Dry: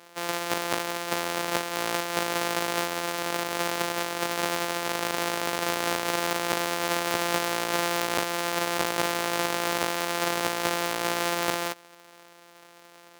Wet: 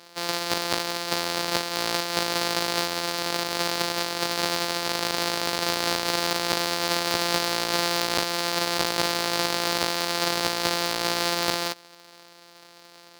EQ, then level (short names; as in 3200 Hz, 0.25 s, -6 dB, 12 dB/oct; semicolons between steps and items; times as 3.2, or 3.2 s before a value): low shelf 120 Hz +6.5 dB; bell 4500 Hz +10.5 dB 0.64 oct; 0.0 dB